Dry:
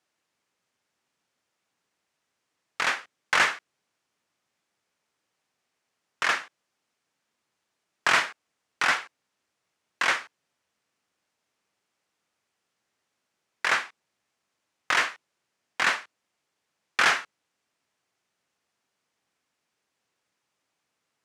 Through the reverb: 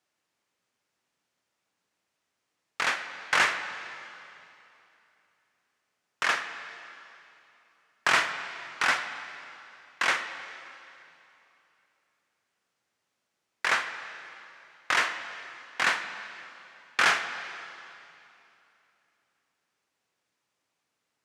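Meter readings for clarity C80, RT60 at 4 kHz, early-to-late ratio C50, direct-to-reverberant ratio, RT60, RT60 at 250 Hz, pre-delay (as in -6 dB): 10.0 dB, 2.7 s, 9.0 dB, 8.0 dB, 2.9 s, 3.0 s, 7 ms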